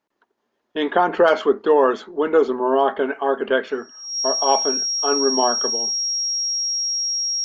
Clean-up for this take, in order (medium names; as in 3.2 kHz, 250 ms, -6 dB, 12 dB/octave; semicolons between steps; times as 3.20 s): band-stop 5.6 kHz, Q 30